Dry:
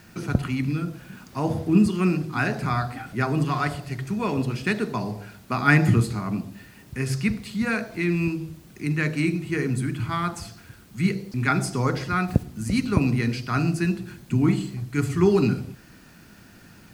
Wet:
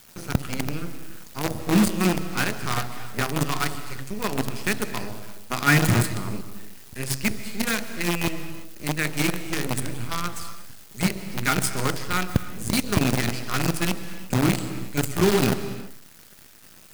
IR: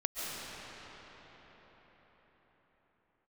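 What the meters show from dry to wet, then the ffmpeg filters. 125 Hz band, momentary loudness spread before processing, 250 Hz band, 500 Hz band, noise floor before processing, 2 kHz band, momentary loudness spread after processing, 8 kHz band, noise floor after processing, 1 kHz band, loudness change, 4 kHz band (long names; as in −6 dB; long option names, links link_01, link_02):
−3.0 dB, 12 LU, −2.5 dB, −1.0 dB, −50 dBFS, +0.5 dB, 15 LU, +10.0 dB, −48 dBFS, −0.5 dB, −1.0 dB, +8.0 dB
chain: -filter_complex "[0:a]crystalizer=i=2:c=0,acrusher=bits=4:dc=4:mix=0:aa=0.000001,asplit=2[link_01][link_02];[1:a]atrim=start_sample=2205,afade=type=out:start_time=0.42:duration=0.01,atrim=end_sample=18963[link_03];[link_02][link_03]afir=irnorm=-1:irlink=0,volume=-12dB[link_04];[link_01][link_04]amix=inputs=2:normalize=0,volume=-3.5dB"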